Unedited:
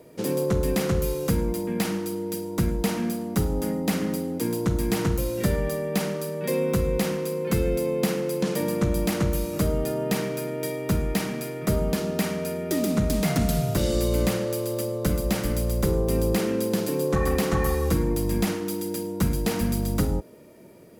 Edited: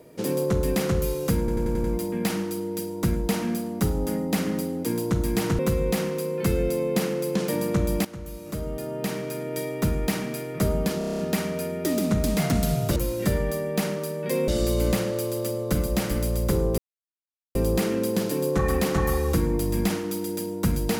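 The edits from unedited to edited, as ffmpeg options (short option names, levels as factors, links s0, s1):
-filter_complex "[0:a]asplit=18[s0][s1][s2][s3][s4][s5][s6][s7][s8][s9][s10][s11][s12][s13][s14][s15][s16][s17];[s0]atrim=end=1.482[s18];[s1]atrim=start=1.388:end=1.482[s19];[s2]atrim=start=1.388:end=1.482[s20];[s3]atrim=start=1.388:end=1.482[s21];[s4]atrim=start=1.388:end=1.482[s22];[s5]atrim=start=1.388:end=5.142[s23];[s6]atrim=start=6.658:end=9.12,asetpts=PTS-STARTPTS,afade=t=out:st=2.458:d=0.004:c=hsin:silence=0.133352[s24];[s7]atrim=start=9.12:end=12.082,asetpts=PTS-STARTPTS,afade=t=in:d=1.63:silence=0.133352[s25];[s8]atrim=start=12.048:end=12.082[s26];[s9]atrim=start=12.048:end=12.082[s27];[s10]atrim=start=12.048:end=12.082[s28];[s11]atrim=start=12.048:end=12.082[s29];[s12]atrim=start=12.048:end=12.082[s30];[s13]atrim=start=12.048:end=12.082[s31];[s14]atrim=start=12.048:end=13.822[s32];[s15]atrim=start=5.138:end=6.662[s33];[s16]atrim=start=13.818:end=16.12,asetpts=PTS-STARTPTS,afade=t=out:st=2.298:d=0.004:c=hsin,apad=pad_dur=0.77[s34];[s17]atrim=start=16.12,asetpts=PTS-STARTPTS,afade=t=in:d=0.004:c=hsin[s35];[s18][s19]acrossfade=d=0.004:c1=hsin:c2=hsin[s36];[s36][s20]acrossfade=d=0.004:c1=hsin:c2=hsin[s37];[s37][s21]acrossfade=d=0.004:c1=hsin:c2=hsin[s38];[s38][s22]acrossfade=d=0.004:c1=hsin:c2=hsin[s39];[s39][s23]acrossfade=d=0.004:c1=hsin:c2=hsin[s40];[s24][s25]concat=n=2:v=0:a=1[s41];[s40][s41]acrossfade=d=0.004:c1=hsin:c2=hsin[s42];[s42][s26]acrossfade=d=0.004:c1=hsin:c2=hsin[s43];[s43][s27]acrossfade=d=0.004:c1=hsin:c2=hsin[s44];[s44][s28]acrossfade=d=0.004:c1=hsin:c2=hsin[s45];[s45][s29]acrossfade=d=0.004:c1=hsin:c2=hsin[s46];[s46][s30]acrossfade=d=0.004:c1=hsin:c2=hsin[s47];[s47][s31]acrossfade=d=0.004:c1=hsin:c2=hsin[s48];[s48][s32]acrossfade=d=0.004:c1=hsin:c2=hsin[s49];[s49][s33]acrossfade=d=0.004:c1=hsin:c2=hsin[s50];[s34][s35]concat=n=2:v=0:a=1[s51];[s50][s51]acrossfade=d=0.004:c1=hsin:c2=hsin"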